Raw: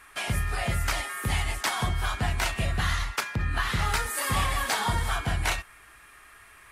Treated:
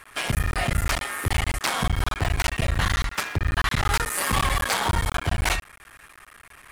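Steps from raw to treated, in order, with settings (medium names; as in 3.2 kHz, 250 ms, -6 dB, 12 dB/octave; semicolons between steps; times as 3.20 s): cycle switcher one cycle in 3, muted; hard clipper -21.5 dBFS, distortion -17 dB; trim +5.5 dB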